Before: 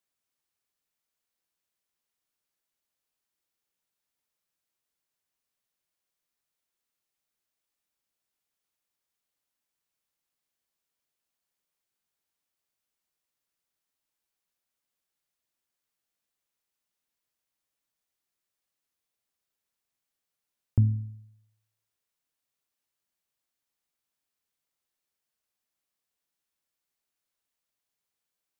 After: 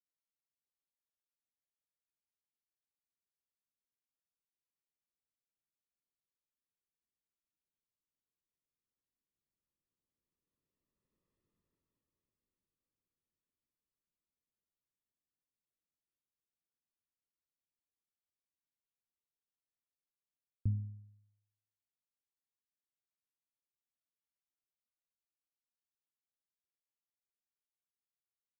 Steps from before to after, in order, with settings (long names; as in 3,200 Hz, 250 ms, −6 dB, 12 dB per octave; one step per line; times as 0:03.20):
source passing by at 0:11.41, 14 m/s, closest 5.5 metres
moving average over 58 samples
level +16 dB